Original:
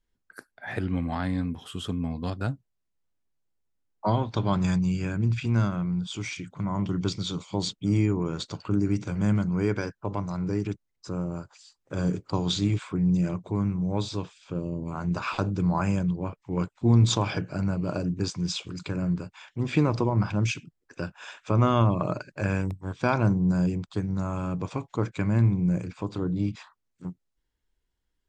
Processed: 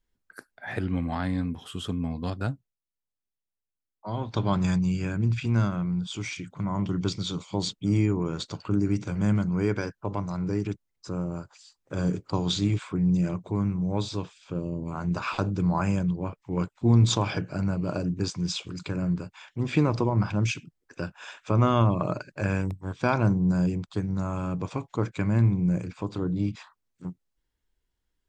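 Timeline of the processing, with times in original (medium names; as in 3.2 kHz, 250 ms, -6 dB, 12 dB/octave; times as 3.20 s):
2.47–4.35 s: dip -13 dB, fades 0.29 s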